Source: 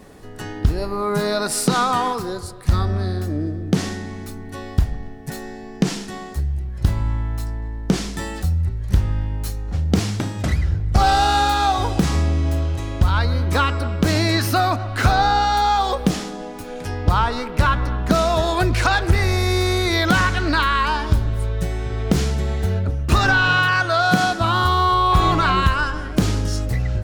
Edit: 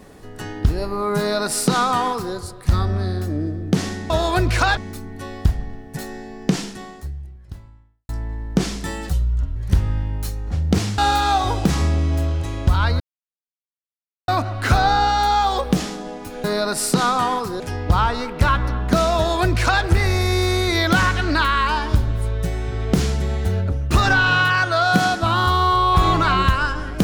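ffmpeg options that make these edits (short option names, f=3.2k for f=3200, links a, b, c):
-filter_complex "[0:a]asplit=11[a][b][c][d][e][f][g][h][i][j][k];[a]atrim=end=4.102[l];[b]atrim=start=18.338:end=19.012[m];[c]atrim=start=4.098:end=7.42,asetpts=PTS-STARTPTS,afade=t=out:st=1.782:d=1.54:c=qua[n];[d]atrim=start=7.42:end=8.464,asetpts=PTS-STARTPTS,afade=t=in:d=0.004:c=hsin[o];[e]atrim=start=8.46:end=8.77,asetpts=PTS-STARTPTS,asetrate=31752,aresample=44100[p];[f]atrim=start=8.766:end=10.192[q];[g]atrim=start=11.318:end=13.34,asetpts=PTS-STARTPTS,afade=t=out:st=2.018:d=0.004:c=hsin[r];[h]atrim=start=13.34:end=14.62,asetpts=PTS-STARTPTS,volume=0[s];[i]atrim=start=14.62:end=16.782,asetpts=PTS-STARTPTS,afade=t=in:d=0.004:c=hsin[t];[j]atrim=start=1.178:end=2.342[u];[k]atrim=start=16.778[v];[l][m]acrossfade=d=0.004:c1=hsin:c2=hsin[w];[n][o]concat=n=2:v=0:a=1[x];[w][x]acrossfade=d=0.004:c1=hsin:c2=hsin[y];[y][p]acrossfade=d=0.004:c1=hsin:c2=hsin[z];[z][q]acrossfade=d=0.004:c1=hsin:c2=hsin[aa];[r][s][t]concat=n=3:v=0:a=1[ab];[aa][ab]acrossfade=d=0.004:c1=hsin:c2=hsin[ac];[ac][u]acrossfade=d=0.004:c1=hsin:c2=hsin[ad];[ad][v]acrossfade=d=0.004:c1=hsin:c2=hsin"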